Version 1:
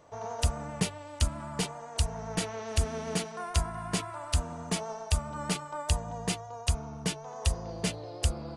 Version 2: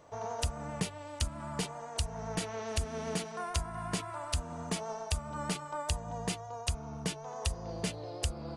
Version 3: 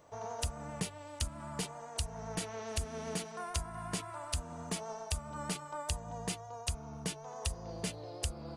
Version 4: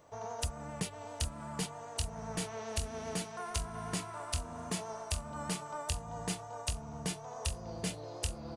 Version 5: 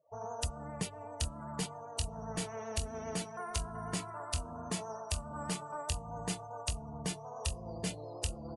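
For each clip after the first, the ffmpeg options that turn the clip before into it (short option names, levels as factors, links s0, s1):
-af "acompressor=threshold=0.0224:ratio=2"
-af "highshelf=f=9200:g=7.5,volume=0.668"
-af "aecho=1:1:803|1606|2409|3212|4015:0.398|0.159|0.0637|0.0255|0.0102"
-af "afftdn=nr=34:nf=-50"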